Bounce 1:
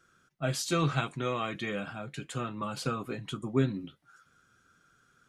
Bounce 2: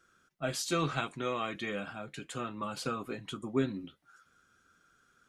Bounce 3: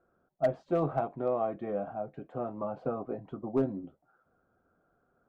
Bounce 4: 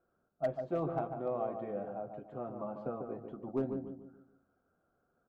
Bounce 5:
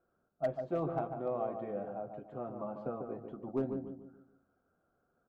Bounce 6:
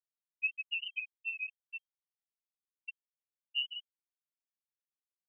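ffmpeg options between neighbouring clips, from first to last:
ffmpeg -i in.wav -af "equalizer=frequency=130:width=2:gain=-7.5,volume=-1.5dB" out.wav
ffmpeg -i in.wav -af "lowpass=frequency=700:width_type=q:width=3.8,volume=19dB,asoftclip=hard,volume=-19dB" out.wav
ffmpeg -i in.wav -filter_complex "[0:a]asplit=2[link_01][link_02];[link_02]adelay=146,lowpass=frequency=1200:poles=1,volume=-5.5dB,asplit=2[link_03][link_04];[link_04]adelay=146,lowpass=frequency=1200:poles=1,volume=0.41,asplit=2[link_05][link_06];[link_06]adelay=146,lowpass=frequency=1200:poles=1,volume=0.41,asplit=2[link_07][link_08];[link_08]adelay=146,lowpass=frequency=1200:poles=1,volume=0.41,asplit=2[link_09][link_10];[link_10]adelay=146,lowpass=frequency=1200:poles=1,volume=0.41[link_11];[link_01][link_03][link_05][link_07][link_09][link_11]amix=inputs=6:normalize=0,volume=-6dB" out.wav
ffmpeg -i in.wav -af anull out.wav
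ffmpeg -i in.wav -af "afftfilt=real='re*gte(hypot(re,im),0.141)':imag='im*gte(hypot(re,im),0.141)':win_size=1024:overlap=0.75,lowpass=frequency=2700:width_type=q:width=0.5098,lowpass=frequency=2700:width_type=q:width=0.6013,lowpass=frequency=2700:width_type=q:width=0.9,lowpass=frequency=2700:width_type=q:width=2.563,afreqshift=-3200" out.wav

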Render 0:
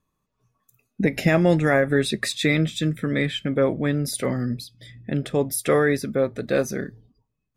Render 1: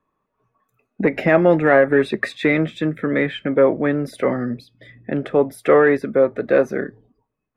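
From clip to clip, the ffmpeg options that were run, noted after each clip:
ffmpeg -i in.wav -filter_complex "[0:a]acontrast=84,acrossover=split=270 2300:gain=0.224 1 0.0631[link_01][link_02][link_03];[link_01][link_02][link_03]amix=inputs=3:normalize=0,volume=1dB" out.wav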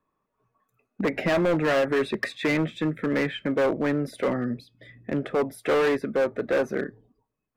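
ffmpeg -i in.wav -af "volume=15dB,asoftclip=hard,volume=-15dB,volume=-4dB" out.wav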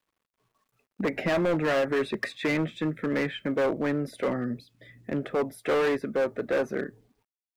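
ffmpeg -i in.wav -af "acrusher=bits=11:mix=0:aa=0.000001,volume=-2.5dB" out.wav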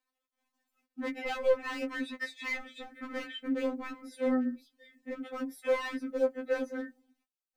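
ffmpeg -i in.wav -af "afftfilt=real='re*3.46*eq(mod(b,12),0)':imag='im*3.46*eq(mod(b,12),0)':win_size=2048:overlap=0.75,volume=-3.5dB" out.wav

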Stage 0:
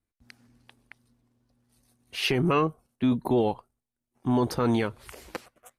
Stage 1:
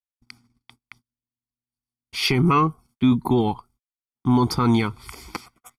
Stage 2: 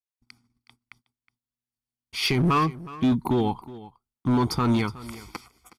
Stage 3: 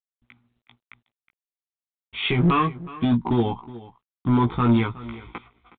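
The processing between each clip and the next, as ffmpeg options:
ffmpeg -i in.wav -af "agate=range=-35dB:threshold=-57dB:ratio=16:detection=peak,equalizer=frequency=5000:width=6.9:gain=10.5,aecho=1:1:0.9:0.84,volume=3dB" out.wav
ffmpeg -i in.wav -af "dynaudnorm=framelen=300:gausssize=7:maxgain=5dB,asoftclip=type=hard:threshold=-10dB,aecho=1:1:367:0.126,volume=-6.5dB" out.wav
ffmpeg -i in.wav -filter_complex "[0:a]asplit=2[link_01][link_02];[link_02]adelay=17,volume=-3.5dB[link_03];[link_01][link_03]amix=inputs=2:normalize=0" -ar 8000 -c:a adpcm_g726 -b:a 40k out.wav

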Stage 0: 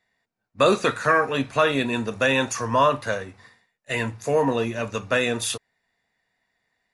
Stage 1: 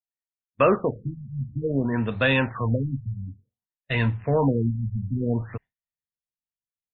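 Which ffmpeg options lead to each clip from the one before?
ffmpeg -i in.wav -af "asubboost=boost=4:cutoff=200,agate=range=-33dB:threshold=-33dB:ratio=3:detection=peak,afftfilt=real='re*lt(b*sr/1024,210*pow(4400/210,0.5+0.5*sin(2*PI*0.56*pts/sr)))':imag='im*lt(b*sr/1024,210*pow(4400/210,0.5+0.5*sin(2*PI*0.56*pts/sr)))':win_size=1024:overlap=0.75" out.wav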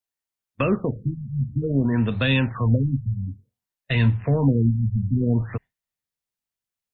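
ffmpeg -i in.wav -filter_complex "[0:a]acrossover=split=290|3000[link_01][link_02][link_03];[link_02]acompressor=threshold=-37dB:ratio=3[link_04];[link_01][link_04][link_03]amix=inputs=3:normalize=0,volume=5.5dB" out.wav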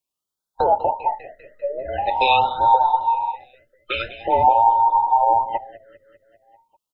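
ffmpeg -i in.wav -af "afftfilt=real='real(if(between(b,1,1008),(2*floor((b-1)/48)+1)*48-b,b),0)':imag='imag(if(between(b,1,1008),(2*floor((b-1)/48)+1)*48-b,b),0)*if(between(b,1,1008),-1,1)':win_size=2048:overlap=0.75,aecho=1:1:198|396|594|792|990|1188:0.2|0.12|0.0718|0.0431|0.0259|0.0155,afftfilt=real='re*(1-between(b*sr/1024,870*pow(2300/870,0.5+0.5*sin(2*PI*0.45*pts/sr))/1.41,870*pow(2300/870,0.5+0.5*sin(2*PI*0.45*pts/sr))*1.41))':imag='im*(1-between(b*sr/1024,870*pow(2300/870,0.5+0.5*sin(2*PI*0.45*pts/sr))/1.41,870*pow(2300/870,0.5+0.5*sin(2*PI*0.45*pts/sr))*1.41))':win_size=1024:overlap=0.75,volume=4dB" out.wav

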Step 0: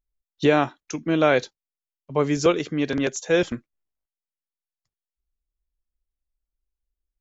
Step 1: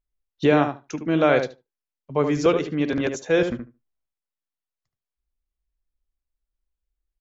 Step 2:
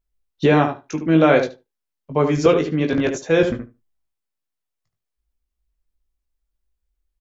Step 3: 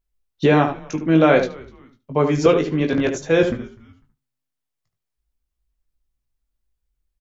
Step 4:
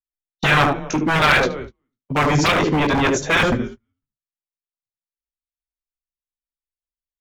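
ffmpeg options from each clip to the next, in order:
ffmpeg -i in.wav -filter_complex "[0:a]highshelf=frequency=5900:gain=-11,asplit=2[link_01][link_02];[link_02]adelay=74,lowpass=frequency=1500:poles=1,volume=-6dB,asplit=2[link_03][link_04];[link_04]adelay=74,lowpass=frequency=1500:poles=1,volume=0.15,asplit=2[link_05][link_06];[link_06]adelay=74,lowpass=frequency=1500:poles=1,volume=0.15[link_07];[link_03][link_05][link_07]amix=inputs=3:normalize=0[link_08];[link_01][link_08]amix=inputs=2:normalize=0" out.wav
ffmpeg -i in.wav -filter_complex "[0:a]lowshelf=frequency=470:gain=3,asplit=2[link_01][link_02];[link_02]adelay=19,volume=-6dB[link_03];[link_01][link_03]amix=inputs=2:normalize=0,volume=2dB" out.wav
ffmpeg -i in.wav -filter_complex "[0:a]asplit=3[link_01][link_02][link_03];[link_02]adelay=249,afreqshift=-130,volume=-23.5dB[link_04];[link_03]adelay=498,afreqshift=-260,volume=-33.1dB[link_05];[link_01][link_04][link_05]amix=inputs=3:normalize=0" out.wav
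ffmpeg -i in.wav -filter_complex "[0:a]agate=range=-35dB:threshold=-38dB:ratio=16:detection=peak,acrossover=split=130|1000|3100[link_01][link_02][link_03][link_04];[link_02]aeval=exprs='0.0841*(abs(mod(val(0)/0.0841+3,4)-2)-1)':channel_layout=same[link_05];[link_01][link_05][link_03][link_04]amix=inputs=4:normalize=0,volume=7.5dB" out.wav

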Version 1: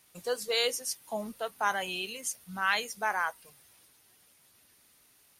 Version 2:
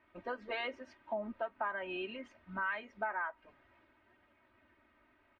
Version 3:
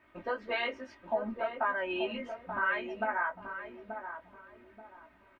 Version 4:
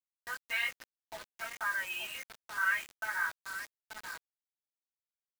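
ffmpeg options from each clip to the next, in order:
ffmpeg -i in.wav -af "lowpass=frequency=2100:width=0.5412,lowpass=frequency=2100:width=1.3066,aecho=1:1:3.2:0.95,acompressor=threshold=-35dB:ratio=4" out.wav
ffmpeg -i in.wav -filter_complex "[0:a]flanger=delay=16.5:depth=2.3:speed=1.8,asplit=2[link_01][link_02];[link_02]adelay=882,lowpass=frequency=920:poles=1,volume=-6dB,asplit=2[link_03][link_04];[link_04]adelay=882,lowpass=frequency=920:poles=1,volume=0.36,asplit=2[link_05][link_06];[link_06]adelay=882,lowpass=frequency=920:poles=1,volume=0.36,asplit=2[link_07][link_08];[link_08]adelay=882,lowpass=frequency=920:poles=1,volume=0.36[link_09];[link_01][link_03][link_05][link_07][link_09]amix=inputs=5:normalize=0,volume=8.5dB" out.wav
ffmpeg -i in.wav -af "highpass=frequency=1700:width_type=q:width=1.7,acrusher=bits=6:mix=0:aa=0.000001,volume=-2dB" out.wav

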